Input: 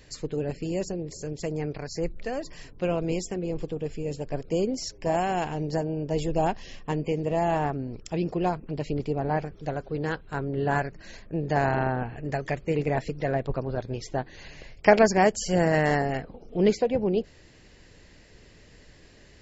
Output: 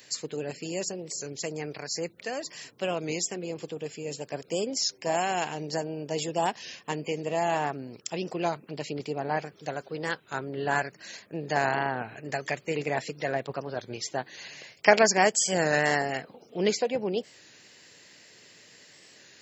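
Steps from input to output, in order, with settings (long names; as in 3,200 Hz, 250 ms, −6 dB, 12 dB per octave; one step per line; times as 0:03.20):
high-pass filter 110 Hz 24 dB per octave
spectral tilt +3 dB per octave
wow of a warped record 33 1/3 rpm, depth 100 cents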